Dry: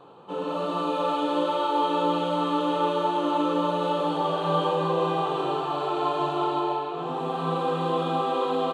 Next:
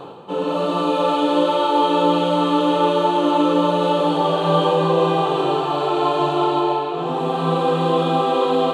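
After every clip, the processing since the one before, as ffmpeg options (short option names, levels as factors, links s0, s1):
-af "areverse,acompressor=mode=upward:threshold=0.0251:ratio=2.5,areverse,equalizer=f=1200:t=o:w=0.99:g=-3.5,volume=2.66"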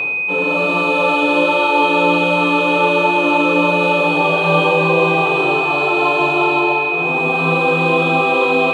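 -af "bandreject=f=50:t=h:w=6,bandreject=f=100:t=h:w=6,bandreject=f=150:t=h:w=6,bandreject=f=200:t=h:w=6,bandreject=f=250:t=h:w=6,bandreject=f=300:t=h:w=6,aeval=exprs='val(0)+0.112*sin(2*PI*2500*n/s)':c=same,volume=1.26"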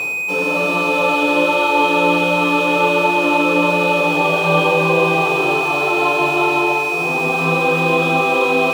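-af "aeval=exprs='sgn(val(0))*max(abs(val(0))-0.0237,0)':c=same"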